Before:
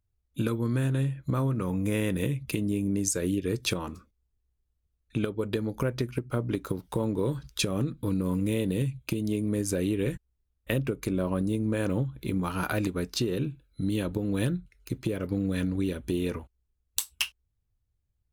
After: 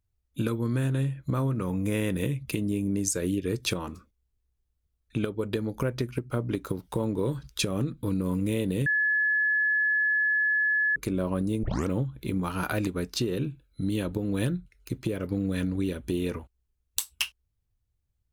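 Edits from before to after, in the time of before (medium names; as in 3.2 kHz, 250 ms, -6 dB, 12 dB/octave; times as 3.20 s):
8.86–10.96 s: bleep 1.71 kHz -21.5 dBFS
11.63 s: tape start 0.25 s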